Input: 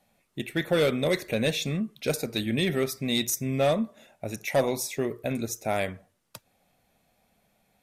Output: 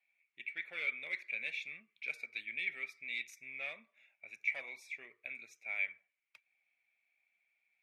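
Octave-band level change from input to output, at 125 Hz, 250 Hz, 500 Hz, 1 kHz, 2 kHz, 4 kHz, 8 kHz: under -40 dB, -37.5 dB, -31.0 dB, -25.0 dB, -3.0 dB, -18.0 dB, -28.0 dB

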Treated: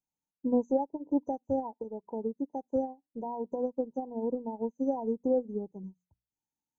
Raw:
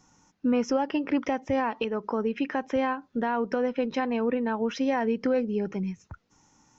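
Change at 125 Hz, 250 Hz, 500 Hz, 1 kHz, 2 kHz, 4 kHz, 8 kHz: -9.5 dB, -5.5 dB, -4.0 dB, -8.0 dB, under -40 dB, under -40 dB, no reading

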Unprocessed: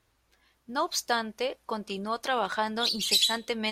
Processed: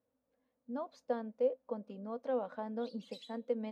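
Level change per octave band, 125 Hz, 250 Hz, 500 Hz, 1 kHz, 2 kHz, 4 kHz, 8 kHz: no reading, -5.0 dB, -3.0 dB, -15.0 dB, -23.0 dB, under -30 dB, under -35 dB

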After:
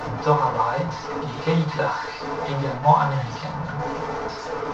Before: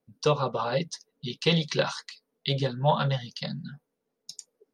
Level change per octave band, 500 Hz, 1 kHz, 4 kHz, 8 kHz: +4.0 dB, +11.0 dB, -5.5 dB, no reading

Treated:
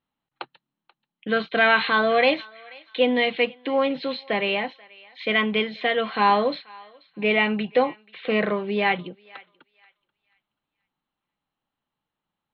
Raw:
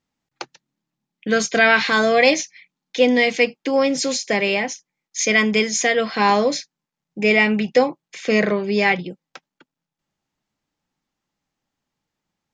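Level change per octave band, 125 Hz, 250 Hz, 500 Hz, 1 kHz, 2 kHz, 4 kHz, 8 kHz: -5.5 dB, -5.5 dB, -4.5 dB, -1.5 dB, -4.5 dB, -3.5 dB, under -40 dB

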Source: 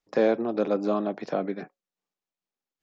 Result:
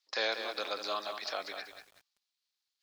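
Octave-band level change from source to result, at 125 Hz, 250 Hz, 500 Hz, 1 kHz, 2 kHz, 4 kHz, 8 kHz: under -30 dB, -24.0 dB, -13.5 dB, -5.0 dB, +2.5 dB, +12.5 dB, no reading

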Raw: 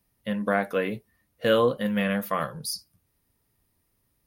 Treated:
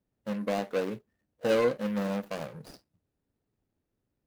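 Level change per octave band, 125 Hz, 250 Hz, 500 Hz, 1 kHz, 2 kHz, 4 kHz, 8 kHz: -6.0 dB, -4.5 dB, -3.5 dB, -7.5 dB, -8.5 dB, -9.0 dB, -11.0 dB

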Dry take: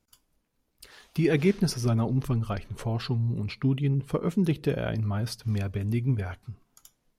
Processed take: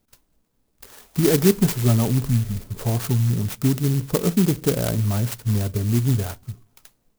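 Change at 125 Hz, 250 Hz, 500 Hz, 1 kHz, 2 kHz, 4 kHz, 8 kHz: +6.5 dB, +6.0 dB, +6.0 dB, +4.0 dB, +2.5 dB, +6.5 dB, +14.0 dB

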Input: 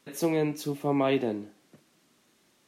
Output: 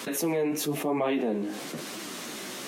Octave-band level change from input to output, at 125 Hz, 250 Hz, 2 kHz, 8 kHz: -3.5 dB, +0.5 dB, +3.0 dB, +9.5 dB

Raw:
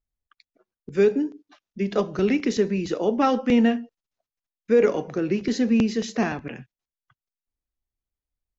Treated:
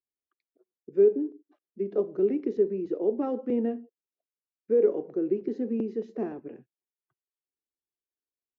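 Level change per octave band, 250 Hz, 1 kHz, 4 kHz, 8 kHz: -8.0 dB, -15.0 dB, under -25 dB, no reading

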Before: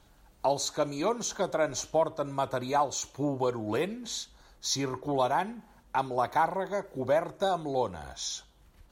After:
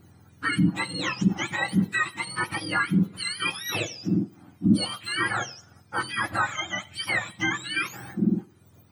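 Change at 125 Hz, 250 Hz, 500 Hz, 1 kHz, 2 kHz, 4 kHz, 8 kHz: +10.0 dB, +10.0 dB, -10.5 dB, -2.5 dB, +14.0 dB, +6.5 dB, -2.0 dB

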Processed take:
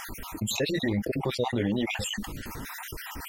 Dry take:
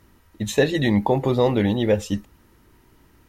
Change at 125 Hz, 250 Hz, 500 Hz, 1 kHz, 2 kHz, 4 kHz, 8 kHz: -8.5 dB, -7.5 dB, -10.5 dB, -8.0 dB, -4.0 dB, -0.5 dB, +1.5 dB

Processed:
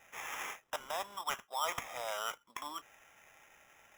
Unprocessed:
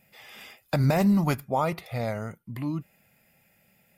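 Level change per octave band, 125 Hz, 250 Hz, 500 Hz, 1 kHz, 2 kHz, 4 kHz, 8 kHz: -37.0 dB, -33.5 dB, -14.0 dB, -6.5 dB, -4.0 dB, +1.0 dB, +2.5 dB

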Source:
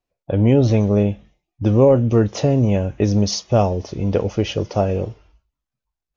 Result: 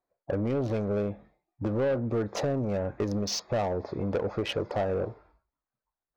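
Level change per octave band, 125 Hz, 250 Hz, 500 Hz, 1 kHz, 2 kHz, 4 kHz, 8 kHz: -15.5 dB, -13.0 dB, -10.5 dB, -9.0 dB, -5.0 dB, -7.5 dB, no reading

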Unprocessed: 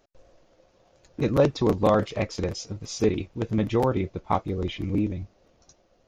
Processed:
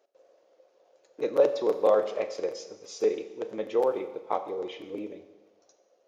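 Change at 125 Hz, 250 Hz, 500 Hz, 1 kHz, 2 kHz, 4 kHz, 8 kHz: under -25 dB, -12.0 dB, 0.0 dB, -4.5 dB, -7.0 dB, -7.5 dB, -7.5 dB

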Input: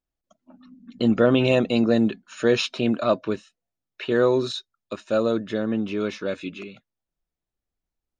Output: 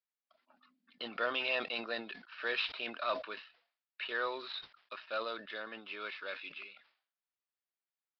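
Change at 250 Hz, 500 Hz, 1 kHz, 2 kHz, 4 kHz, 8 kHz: -28.5 dB, -19.0 dB, -8.0 dB, -5.0 dB, -7.5 dB, no reading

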